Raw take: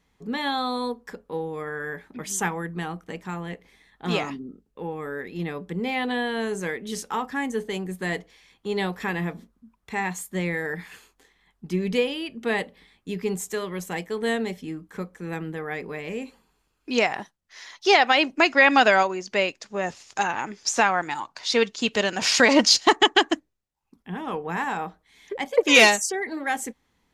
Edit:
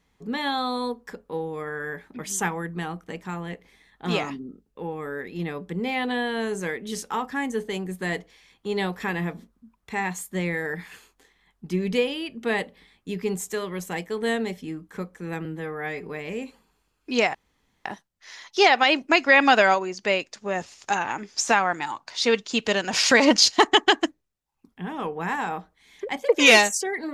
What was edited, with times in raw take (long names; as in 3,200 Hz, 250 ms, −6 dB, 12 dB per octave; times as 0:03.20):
0:15.45–0:15.86: time-stretch 1.5×
0:17.14: splice in room tone 0.51 s